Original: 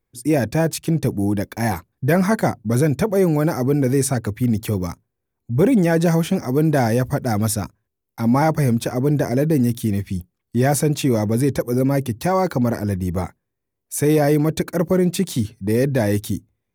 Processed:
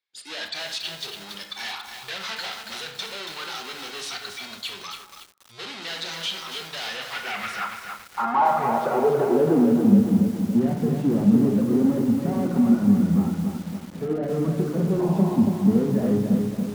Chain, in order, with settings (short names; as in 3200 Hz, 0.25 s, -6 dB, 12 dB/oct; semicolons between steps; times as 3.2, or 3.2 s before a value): spectral noise reduction 13 dB; overdrive pedal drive 34 dB, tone 2600 Hz, clips at -6 dBFS; in parallel at -9.5 dB: sample-and-hold 38×; on the sum: painted sound noise, 14.99–15.36, 540–1100 Hz -14 dBFS; band-pass sweep 3900 Hz -> 220 Hz, 6.82–9.92; on a send at -4 dB: reverb RT60 0.75 s, pre-delay 17 ms; on the sum: lo-fi delay 0.281 s, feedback 55%, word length 6-bit, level -5 dB; gain -4.5 dB